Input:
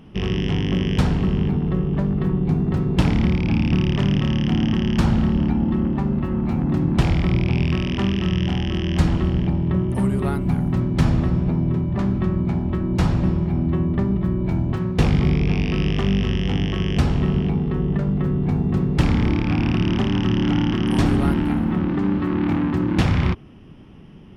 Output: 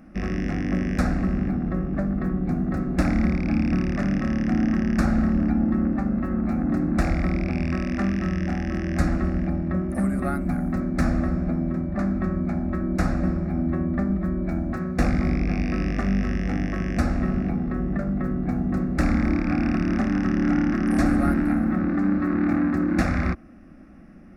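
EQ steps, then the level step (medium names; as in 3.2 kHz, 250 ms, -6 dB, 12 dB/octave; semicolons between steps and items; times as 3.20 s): peaking EQ 1.1 kHz +3 dB 2.7 oct; static phaser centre 630 Hz, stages 8; 0.0 dB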